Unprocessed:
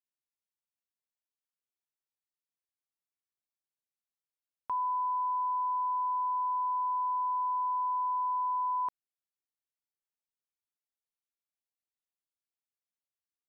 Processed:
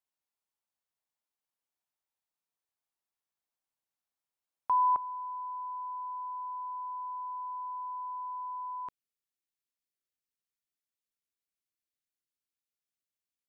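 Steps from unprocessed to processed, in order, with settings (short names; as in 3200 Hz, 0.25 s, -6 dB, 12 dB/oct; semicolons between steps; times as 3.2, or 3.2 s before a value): bell 850 Hz +7 dB 1.1 oct, from 4.96 s -9 dB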